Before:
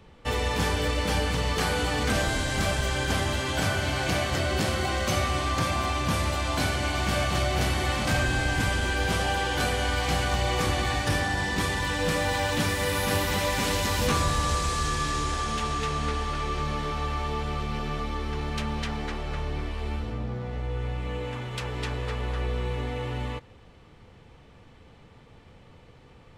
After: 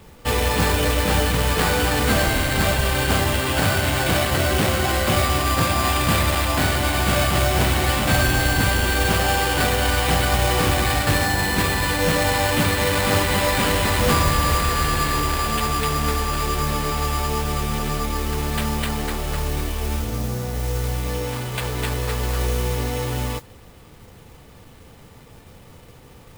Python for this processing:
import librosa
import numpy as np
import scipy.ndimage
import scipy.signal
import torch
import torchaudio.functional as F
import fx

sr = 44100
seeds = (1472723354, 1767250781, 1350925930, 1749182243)

y = fx.high_shelf(x, sr, hz=3900.0, db=6.0, at=(5.84, 6.45))
y = fx.sample_hold(y, sr, seeds[0], rate_hz=6000.0, jitter_pct=0)
y = fx.mod_noise(y, sr, seeds[1], snr_db=14)
y = y * librosa.db_to_amplitude(6.5)